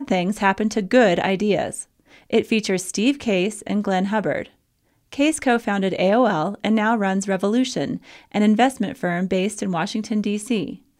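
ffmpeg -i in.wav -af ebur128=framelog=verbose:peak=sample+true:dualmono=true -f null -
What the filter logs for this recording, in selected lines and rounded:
Integrated loudness:
  I:         -17.9 LUFS
  Threshold: -28.3 LUFS
Loudness range:
  LRA:         2.1 LU
  Threshold: -38.3 LUFS
  LRA low:   -19.6 LUFS
  LRA high:  -17.4 LUFS
Sample peak:
  Peak:       -2.9 dBFS
True peak:
  Peak:       -2.9 dBFS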